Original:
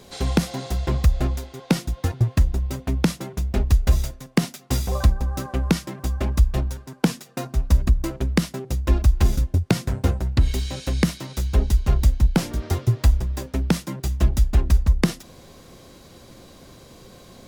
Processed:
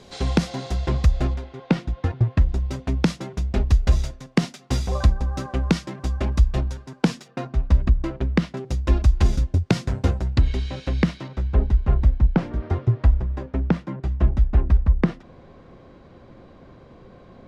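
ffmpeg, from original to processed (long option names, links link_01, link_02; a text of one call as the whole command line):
ffmpeg -i in.wav -af "asetnsamples=nb_out_samples=441:pad=0,asendcmd='1.34 lowpass f 2800;2.49 lowpass f 6000;7.28 lowpass f 3100;8.57 lowpass f 6200;10.41 lowpass f 3200;11.28 lowpass f 1800',lowpass=6300" out.wav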